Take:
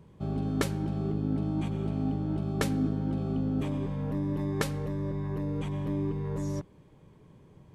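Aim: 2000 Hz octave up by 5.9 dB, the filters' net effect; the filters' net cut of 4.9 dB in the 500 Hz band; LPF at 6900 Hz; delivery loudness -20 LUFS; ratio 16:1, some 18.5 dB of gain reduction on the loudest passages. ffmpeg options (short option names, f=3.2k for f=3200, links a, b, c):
-af "lowpass=6.9k,equalizer=f=500:t=o:g=-7,equalizer=f=2k:t=o:g=7.5,acompressor=threshold=-42dB:ratio=16,volume=26.5dB"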